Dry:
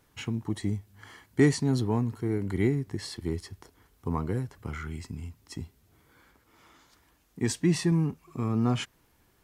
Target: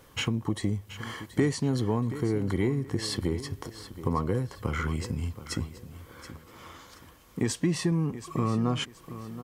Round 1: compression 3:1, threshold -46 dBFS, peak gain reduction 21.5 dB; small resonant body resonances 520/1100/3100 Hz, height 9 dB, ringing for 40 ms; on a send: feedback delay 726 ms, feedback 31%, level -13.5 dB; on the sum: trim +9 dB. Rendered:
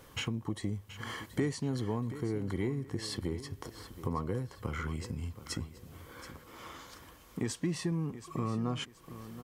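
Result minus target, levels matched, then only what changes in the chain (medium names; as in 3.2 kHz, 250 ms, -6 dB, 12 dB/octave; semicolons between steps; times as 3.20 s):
compression: peak gain reduction +6.5 dB
change: compression 3:1, threshold -36 dBFS, peak gain reduction 14.5 dB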